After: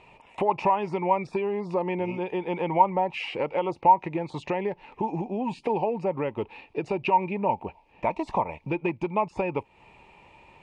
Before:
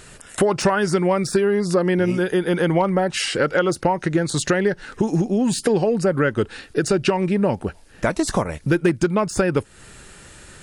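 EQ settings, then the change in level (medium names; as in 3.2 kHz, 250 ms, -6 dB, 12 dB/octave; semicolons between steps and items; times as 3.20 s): two resonant band-passes 1.5 kHz, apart 1.4 oct; tilt EQ -4.5 dB/octave; +6.0 dB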